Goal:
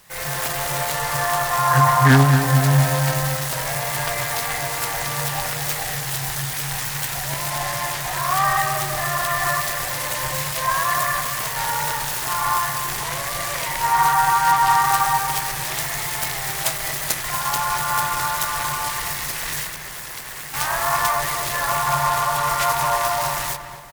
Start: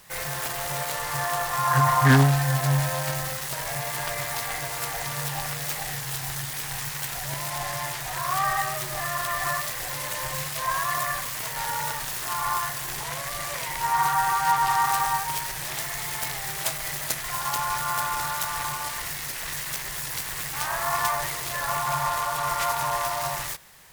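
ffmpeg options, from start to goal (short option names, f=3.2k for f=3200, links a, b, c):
-filter_complex "[0:a]asettb=1/sr,asplit=3[a][b][c];[a]atrim=end=19.664[d];[b]atrim=start=19.66:end=20.54,asetpts=PTS-STARTPTS,afade=t=in:d=0.004:c=qsin,afade=t=out:st=0.876:d=0.004:c=qsin,acrossover=split=190|2800[e][f][g];[e]acompressor=threshold=-55dB:ratio=4[h];[f]acompressor=threshold=-42dB:ratio=4[i];[g]acompressor=threshold=-39dB:ratio=4[j];[h][i][j]amix=inputs=3:normalize=0[k];[c]atrim=start=20.536[l];[d][k]acrossfade=d=0.004:c1=hsin:c2=qsin[m];[m][l]acrossfade=d=0.004:c1=qsin:c2=hsin,asplit=2[n][o];[o]adelay=233,lowpass=f=1.8k:p=1,volume=-7.5dB,asplit=2[p][q];[q]adelay=233,lowpass=f=1.8k:p=1,volume=0.48,asplit=2[r][s];[s]adelay=233,lowpass=f=1.8k:p=1,volume=0.48,asplit=2[t][u];[u]adelay=233,lowpass=f=1.8k:p=1,volume=0.48,asplit=2[v][w];[w]adelay=233,lowpass=f=1.8k:p=1,volume=0.48,asplit=2[x][y];[y]adelay=233,lowpass=f=1.8k:p=1,volume=0.48[z];[n][p][r][t][v][x][z]amix=inputs=7:normalize=0,dynaudnorm=f=140:g=3:m=5.5dB"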